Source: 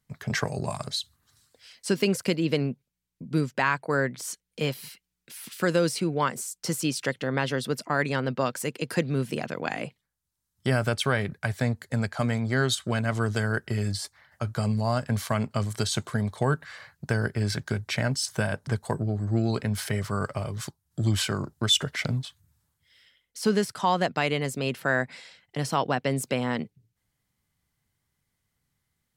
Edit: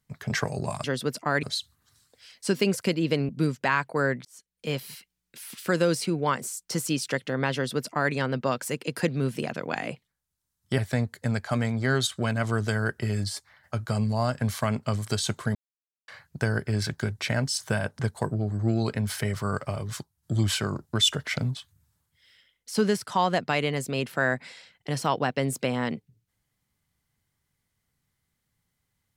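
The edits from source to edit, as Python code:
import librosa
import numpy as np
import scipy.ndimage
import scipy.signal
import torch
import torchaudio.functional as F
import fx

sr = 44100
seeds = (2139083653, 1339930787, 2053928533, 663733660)

y = fx.edit(x, sr, fx.cut(start_s=2.7, length_s=0.53),
    fx.fade_in_span(start_s=4.19, length_s=0.58),
    fx.duplicate(start_s=7.48, length_s=0.59, to_s=0.84),
    fx.cut(start_s=10.72, length_s=0.74),
    fx.silence(start_s=16.23, length_s=0.53), tone=tone)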